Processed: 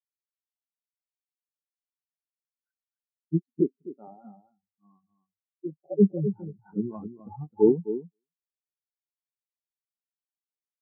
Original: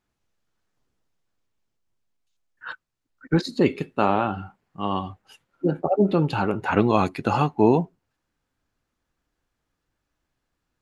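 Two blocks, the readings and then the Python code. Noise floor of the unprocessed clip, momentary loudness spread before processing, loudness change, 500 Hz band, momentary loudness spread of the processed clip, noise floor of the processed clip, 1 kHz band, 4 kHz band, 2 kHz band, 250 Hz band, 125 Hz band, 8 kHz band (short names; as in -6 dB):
-80 dBFS, 19 LU, -3.5 dB, -4.5 dB, 19 LU, under -85 dBFS, -24.0 dB, under -40 dB, under -40 dB, -4.0 dB, -7.0 dB, n/a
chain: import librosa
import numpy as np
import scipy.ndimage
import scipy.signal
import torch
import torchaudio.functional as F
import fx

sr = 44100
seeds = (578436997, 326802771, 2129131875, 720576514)

y = fx.echo_feedback(x, sr, ms=260, feedback_pct=20, wet_db=-3)
y = fx.spectral_expand(y, sr, expansion=4.0)
y = y * 10.0 ** (-3.5 / 20.0)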